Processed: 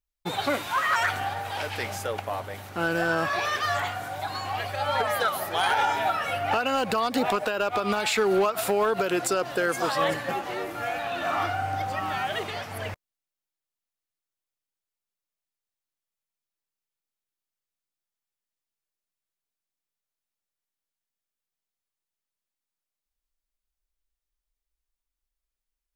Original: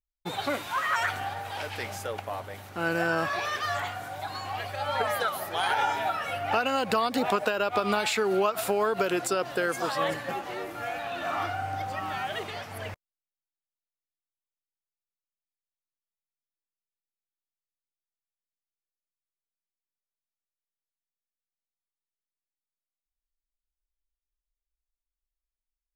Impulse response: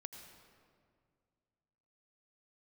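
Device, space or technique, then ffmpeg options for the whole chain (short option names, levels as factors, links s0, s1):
limiter into clipper: -af "alimiter=limit=0.158:level=0:latency=1:release=243,asoftclip=type=hard:threshold=0.1,volume=1.5"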